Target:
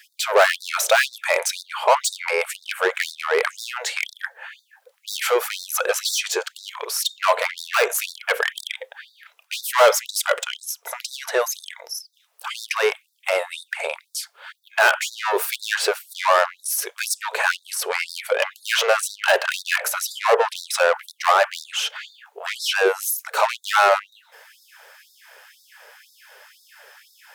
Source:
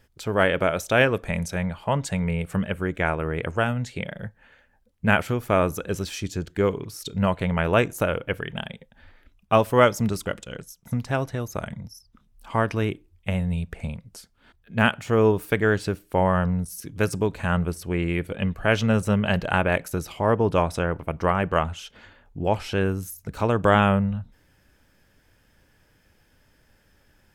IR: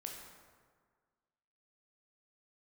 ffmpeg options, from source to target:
-filter_complex "[0:a]asplit=2[a][b];[b]highpass=f=720:p=1,volume=29dB,asoftclip=type=tanh:threshold=-3dB[c];[a][c]amix=inputs=2:normalize=0,lowpass=f=1.2k:p=1,volume=-6dB,aemphasis=mode=production:type=50kf,afftfilt=real='re*gte(b*sr/1024,380*pow(3600/380,0.5+0.5*sin(2*PI*2*pts/sr)))':imag='im*gte(b*sr/1024,380*pow(3600/380,0.5+0.5*sin(2*PI*2*pts/sr)))':win_size=1024:overlap=0.75"

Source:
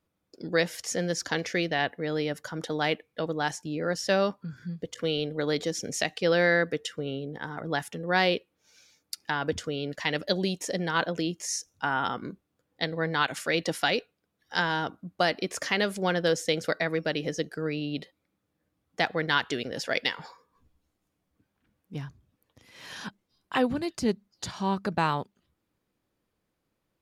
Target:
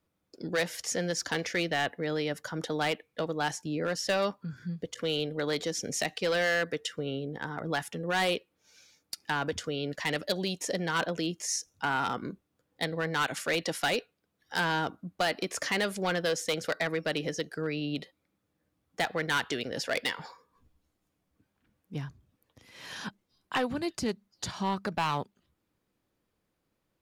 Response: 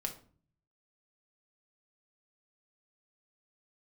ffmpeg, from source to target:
-filter_complex "[0:a]acrossover=split=610|2100[a][b][c];[a]alimiter=level_in=1dB:limit=-24dB:level=0:latency=1:release=273,volume=-1dB[d];[d][b][c]amix=inputs=3:normalize=0,asoftclip=type=hard:threshold=-22.5dB"

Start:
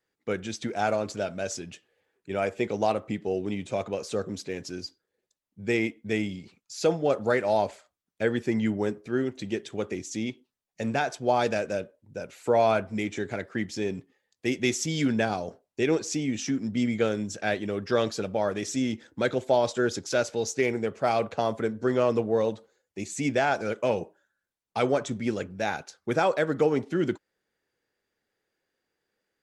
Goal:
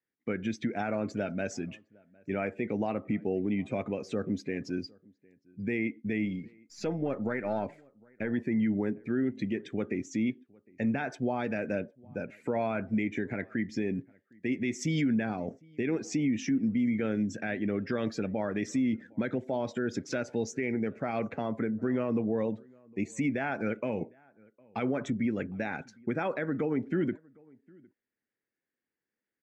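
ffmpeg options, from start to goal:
-filter_complex "[0:a]asettb=1/sr,asplit=3[a][b][c];[a]atrim=end=6.254[d];[b]atrim=start=6.25:end=8.34,asetpts=PTS-STARTPTS,afade=t=in:d=0.004:c=qsin,afade=t=out:st=2.086:d=0.004:c=qsin,aeval=exprs='if(lt(val(0),0),0.708*val(0),val(0))':c=same[e];[c]atrim=start=8.336[f];[d][e]acrossfade=d=0.004:c1=hsin:c2=qsin[g];[g][f]acrossfade=d=0.004:c1=qsin:c2=hsin,equalizer=f=125:t=o:w=1:g=5,equalizer=f=250:t=o:w=1:g=11,equalizer=f=2k:t=o:w=1:g=9,equalizer=f=4k:t=o:w=1:g=-3,equalizer=f=8k:t=o:w=1:g=-4,alimiter=limit=-16.5dB:level=0:latency=1:release=129,afftdn=nr=12:nf=-45,asplit=2[h][i];[i]adelay=758,volume=-27dB,highshelf=f=4k:g=-17.1[j];[h][j]amix=inputs=2:normalize=0,volume=-4.5dB"

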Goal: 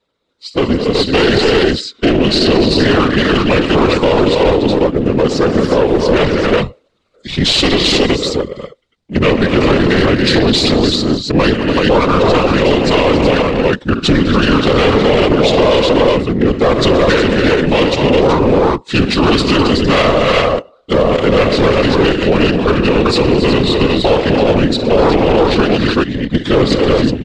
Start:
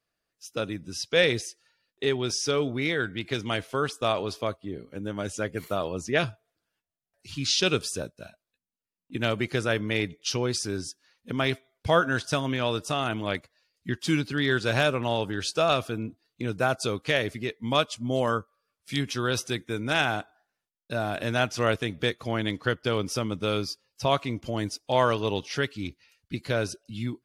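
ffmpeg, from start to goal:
-af "highshelf=f=4.4k:g=-9,aecho=1:1:53|72|128|206|280|375:0.178|0.112|0.168|0.211|0.355|0.631,asetrate=35002,aresample=44100,atempo=1.25992,dynaudnorm=f=150:g=7:m=8dB,aeval=exprs='clip(val(0),-1,0.0168)':c=same,afftfilt=real='hypot(re,im)*cos(2*PI*random(0))':imag='hypot(re,im)*sin(2*PI*random(1))':win_size=512:overlap=0.75,adynamicsmooth=sensitivity=1:basefreq=6.6k,equalizer=f=250:t=o:w=1:g=5,equalizer=f=500:t=o:w=1:g=8,equalizer=f=4k:t=o:w=1:g=11,equalizer=f=8k:t=o:w=1:g=6,alimiter=level_in=16.5dB:limit=-1dB:release=50:level=0:latency=1,volume=-1dB"

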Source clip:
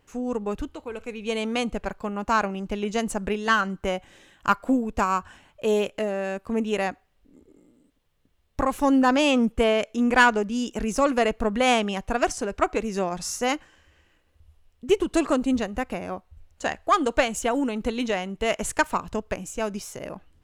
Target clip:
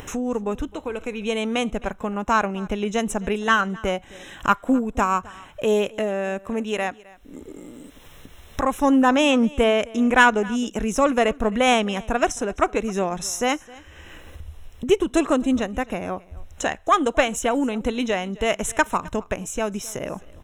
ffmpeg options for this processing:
-filter_complex "[0:a]asettb=1/sr,asplit=3[a][b][c];[a]atrim=end=6.454[d];[b]atrim=start=6.45:end=8.64,asetpts=PTS-STARTPTS,afade=t=in:d=0.004:c=qsin,afade=t=out:st=2.186:d=0.004:c=qsin,lowshelf=f=490:g=-5.5[e];[c]atrim=start=8.636[f];[d][e]acrossfade=d=0.004:c1=hsin:c2=qsin[g];[g][f]acrossfade=d=0.004:c1=qsin:c2=hsin,acompressor=mode=upward:threshold=-25dB:ratio=2.5,asuperstop=centerf=4600:order=12:qfactor=4.5,aecho=1:1:262:0.0794,volume=2.5dB"

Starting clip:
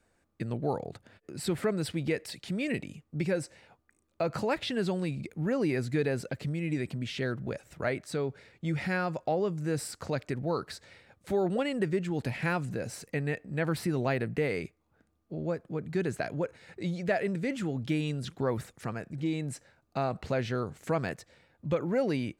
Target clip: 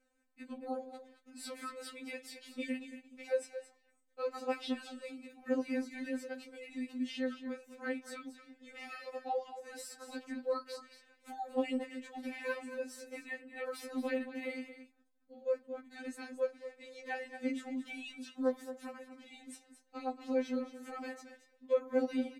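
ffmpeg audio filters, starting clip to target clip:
-af "aecho=1:1:225:0.266,flanger=delay=9.1:depth=4.1:regen=-73:speed=1.1:shape=sinusoidal,afftfilt=real='re*3.46*eq(mod(b,12),0)':imag='im*3.46*eq(mod(b,12),0)':win_size=2048:overlap=0.75,volume=-1dB"

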